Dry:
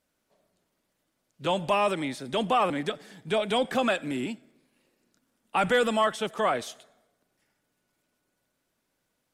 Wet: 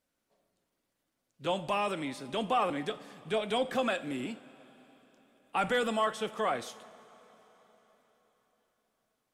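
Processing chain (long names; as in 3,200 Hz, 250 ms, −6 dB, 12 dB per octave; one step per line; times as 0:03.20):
coupled-rooms reverb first 0.33 s, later 4.5 s, from −18 dB, DRR 10.5 dB
level −5.5 dB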